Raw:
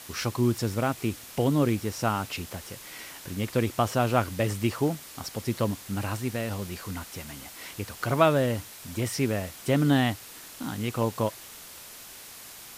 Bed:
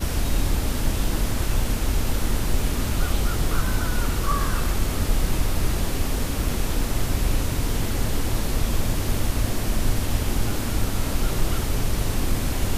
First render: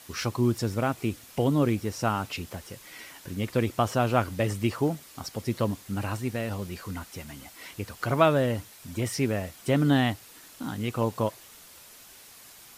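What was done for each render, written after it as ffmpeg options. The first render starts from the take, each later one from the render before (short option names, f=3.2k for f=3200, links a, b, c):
-af "afftdn=nr=6:nf=-45"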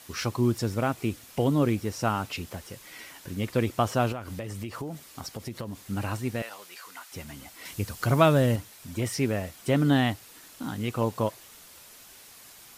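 -filter_complex "[0:a]asettb=1/sr,asplit=3[a][b][c];[a]atrim=end=4.124[d];[b]atrim=start=4.12:end=5.83,asetpts=PTS-STARTPTS,afade=t=in:d=0.004:c=qsin,afade=t=out:st=1.706:d=0.004:c=qsin,acompressor=threshold=-31dB:ratio=8:attack=3.2:release=140:knee=1:detection=peak[e];[c]atrim=start=5.826[f];[d][e]acrossfade=d=0.004:c1=hsin:c2=qsin[g];[g][f]acrossfade=d=0.004:c1=qsin:c2=hsin,asettb=1/sr,asplit=3[h][i][j];[h]atrim=end=6.424[k];[i]atrim=start=6.42:end=7.12,asetpts=PTS-STARTPTS,afade=t=in:d=0.004:c=qsin,afade=t=out:st=0.696:d=0.004:c=qsin,highpass=890[l];[j]atrim=start=7.116[m];[k][l]acrossfade=d=0.004:c1=hsin:c2=qsin[n];[n][m]acrossfade=d=0.004:c1=qsin:c2=hsin,asettb=1/sr,asplit=3[o][p][q];[o]atrim=end=7.654[r];[p]atrim=start=7.65:end=8.56,asetpts=PTS-STARTPTS,afade=t=in:d=0.004:c=qsin,afade=t=out:st=0.906:d=0.004:c=qsin,bass=f=250:g=6,treble=f=4k:g=6[s];[q]atrim=start=8.556[t];[r][s]acrossfade=d=0.004:c1=hsin:c2=qsin[u];[u][t]acrossfade=d=0.004:c1=qsin:c2=hsin"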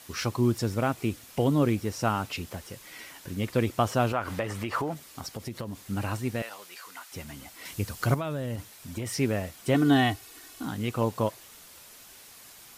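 -filter_complex "[0:a]asettb=1/sr,asplit=3[a][b][c];[a]atrim=end=4.134[d];[b]atrim=start=4.13:end=4.94,asetpts=PTS-STARTPTS,afade=t=in:d=0.004:c=qsin,afade=t=out:st=0.806:d=0.004:c=qsin,equalizer=f=1.2k:w=0.44:g=11.5[e];[c]atrim=start=4.936[f];[d][e]acrossfade=d=0.004:c1=hsin:c2=qsin[g];[g][f]acrossfade=d=0.004:c1=qsin:c2=hsin,asettb=1/sr,asplit=3[h][i][j];[h]atrim=end=8.144[k];[i]atrim=start=8.14:end=9.09,asetpts=PTS-STARTPTS,afade=t=in:d=0.004:c=qsin,afade=t=out:st=0.946:d=0.004:c=qsin,acompressor=threshold=-28dB:ratio=10:attack=3.2:release=140:knee=1:detection=peak[l];[j]atrim=start=9.086[m];[k][l]acrossfade=d=0.004:c1=hsin:c2=qsin[n];[n][m]acrossfade=d=0.004:c1=qsin:c2=hsin,asettb=1/sr,asplit=3[o][p][q];[o]atrim=end=9.744[r];[p]atrim=start=9.74:end=10.65,asetpts=PTS-STARTPTS,afade=t=in:d=0.004:c=qsin,afade=t=out:st=0.906:d=0.004:c=qsin,aecho=1:1:2.7:0.67,atrim=end_sample=40131[s];[q]atrim=start=10.646[t];[r][s]acrossfade=d=0.004:c1=hsin:c2=qsin[u];[u][t]acrossfade=d=0.004:c1=qsin:c2=hsin"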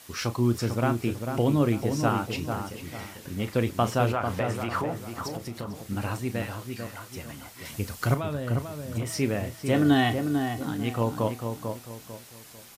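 -filter_complex "[0:a]asplit=2[a][b];[b]adelay=34,volume=-12dB[c];[a][c]amix=inputs=2:normalize=0,asplit=2[d][e];[e]adelay=446,lowpass=f=1.5k:p=1,volume=-5.5dB,asplit=2[f][g];[g]adelay=446,lowpass=f=1.5k:p=1,volume=0.36,asplit=2[h][i];[i]adelay=446,lowpass=f=1.5k:p=1,volume=0.36,asplit=2[j][k];[k]adelay=446,lowpass=f=1.5k:p=1,volume=0.36[l];[d][f][h][j][l]amix=inputs=5:normalize=0"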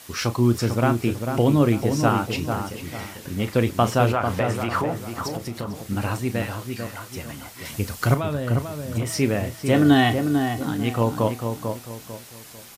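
-af "volume=5dB"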